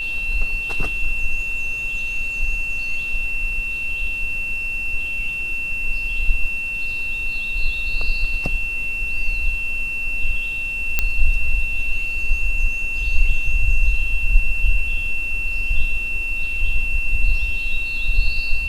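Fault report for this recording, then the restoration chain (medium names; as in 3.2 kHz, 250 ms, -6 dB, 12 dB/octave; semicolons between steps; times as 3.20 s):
whine 2.7 kHz -23 dBFS
10.99 s: pop -3 dBFS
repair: de-click; band-stop 2.7 kHz, Q 30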